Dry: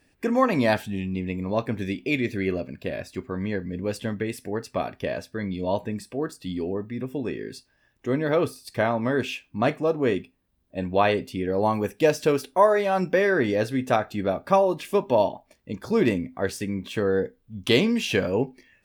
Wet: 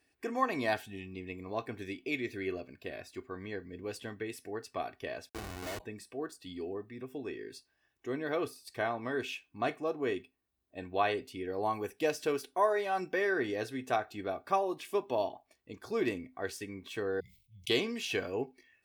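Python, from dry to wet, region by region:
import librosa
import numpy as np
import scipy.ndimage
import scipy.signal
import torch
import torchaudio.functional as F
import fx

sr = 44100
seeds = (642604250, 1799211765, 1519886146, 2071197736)

y = fx.chain(x, sr, fx.schmitt(flips_db=-28.5),
    fx.notch(hz=3300.0, q=25.0), at=(5.29, 5.8))
y = fx.chain(y, sr, fx.brickwall_bandstop(low_hz=190.0, high_hz=2000.0),
    fx.sustainer(db_per_s=83.0), at=(17.2, 17.7))
y = scipy.signal.sosfilt(scipy.signal.butter(2, 48.0, 'highpass', fs=sr, output='sos'), y)
y = fx.low_shelf(y, sr, hz=370.0, db=-7.0)
y = y + 0.47 * np.pad(y, (int(2.7 * sr / 1000.0), 0))[:len(y)]
y = F.gain(torch.from_numpy(y), -8.5).numpy()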